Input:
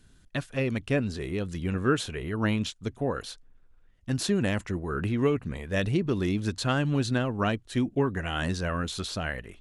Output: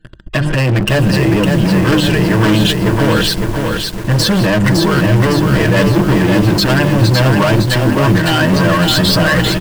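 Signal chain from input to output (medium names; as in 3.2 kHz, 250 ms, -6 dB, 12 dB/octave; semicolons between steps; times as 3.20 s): treble shelf 3.4 kHz -9.5 dB; hum notches 50/100/150/200/250/300/350 Hz; comb 6.4 ms, depth 88%; loudest bins only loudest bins 64; waveshaping leveller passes 5; in parallel at +2.5 dB: compressor with a negative ratio -22 dBFS, ratio -0.5; on the sum: rippled EQ curve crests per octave 1.3, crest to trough 7 dB; hard clipper -9.5 dBFS, distortion -16 dB; bit-crushed delay 559 ms, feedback 55%, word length 5-bit, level -3.5 dB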